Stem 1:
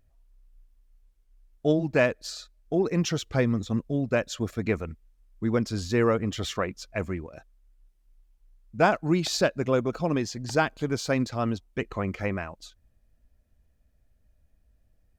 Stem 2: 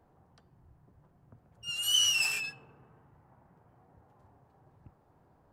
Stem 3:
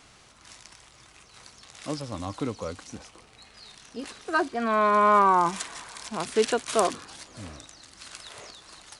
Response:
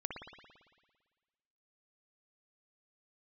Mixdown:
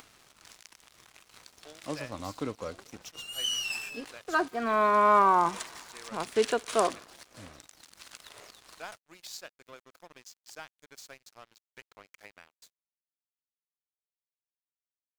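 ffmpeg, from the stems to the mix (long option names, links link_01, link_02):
-filter_complex "[0:a]highpass=frequency=560:poles=1,aemphasis=mode=production:type=riaa,volume=-17.5dB,asplit=3[link_01][link_02][link_03];[link_01]atrim=end=6.29,asetpts=PTS-STARTPTS,afade=type=out:start_time=6.286:duration=0.004:curve=hsin[link_04];[link_02]atrim=start=6.29:end=6.8,asetpts=PTS-STARTPTS,volume=0[link_05];[link_03]atrim=start=6.8,asetpts=PTS-STARTPTS,afade=type=in:duration=0.004:curve=hsin[link_06];[link_04][link_05][link_06]concat=n=3:v=0:a=1[link_07];[1:a]acompressor=mode=upward:threshold=-51dB:ratio=2.5,adelay=1500,volume=-3.5dB[link_08];[2:a]volume=-2.5dB,asplit=2[link_09][link_10];[link_10]volume=-19dB[link_11];[3:a]atrim=start_sample=2205[link_12];[link_11][link_12]afir=irnorm=-1:irlink=0[link_13];[link_07][link_08][link_09][link_13]amix=inputs=4:normalize=0,bass=frequency=250:gain=-4,treble=frequency=4000:gain=-3,acompressor=mode=upward:threshold=-40dB:ratio=2.5,aeval=exprs='sgn(val(0))*max(abs(val(0))-0.00376,0)':channel_layout=same"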